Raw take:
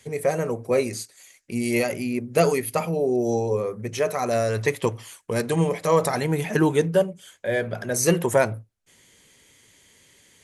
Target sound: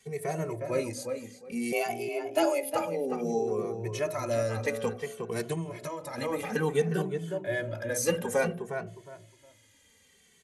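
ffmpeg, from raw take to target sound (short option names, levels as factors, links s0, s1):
-filter_complex "[0:a]bandreject=f=61.94:t=h:w=4,bandreject=f=123.88:t=h:w=4,bandreject=f=185.82:t=h:w=4,bandreject=f=247.76:t=h:w=4,bandreject=f=309.7:t=h:w=4,bandreject=f=371.64:t=h:w=4,bandreject=f=433.58:t=h:w=4,bandreject=f=495.52:t=h:w=4,bandreject=f=557.46:t=h:w=4,bandreject=f=619.4:t=h:w=4,bandreject=f=681.34:t=h:w=4,asettb=1/sr,asplit=3[s0][s1][s2];[s0]atrim=end=1.724[s3];[s1]atrim=start=1.72:end=2.74,asetpts=PTS-STARTPTS,afade=t=in:d=0.004:c=qsin,afade=t=out:st=1.016:d=0.004:c=qsin,afreqshift=160[s4];[s2]atrim=start=2.736[s5];[s3][s4]acrossfade=d=0.004:c1=hsin:c2=qsin[s6];[s6][s5]acrossfade=d=0.004:c1=qsin:c2=hsin,asplit=2[s7][s8];[s8]adelay=360,lowpass=f=2300:p=1,volume=0.473,asplit=2[s9][s10];[s10]adelay=360,lowpass=f=2300:p=1,volume=0.22,asplit=2[s11][s12];[s12]adelay=360,lowpass=f=2300:p=1,volume=0.22[s13];[s9][s11][s13]amix=inputs=3:normalize=0[s14];[s7][s14]amix=inputs=2:normalize=0,asettb=1/sr,asplit=3[s15][s16][s17];[s15]atrim=end=5.534[s18];[s16]atrim=start=5.53:end=6.18,asetpts=PTS-STARTPTS,afade=t=in:d=0.004:c=qsin,afade=t=out:st=0.646:d=0.004:c=qsin,acompressor=threshold=0.0562:ratio=16[s19];[s17]atrim=start=6.176[s20];[s18][s19]acrossfade=d=0.004:c1=hsin:c2=qsin[s21];[s21][s20]acrossfade=d=0.004:c1=qsin:c2=hsin,asplit=2[s22][s23];[s23]adelay=2.2,afreqshift=-0.58[s24];[s22][s24]amix=inputs=2:normalize=1,volume=0.631"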